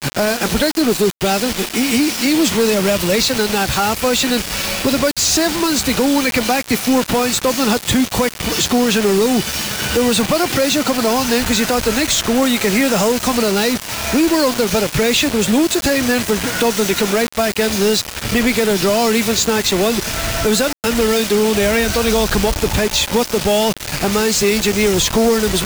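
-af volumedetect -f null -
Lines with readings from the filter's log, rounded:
mean_volume: -16.0 dB
max_volume: -8.1 dB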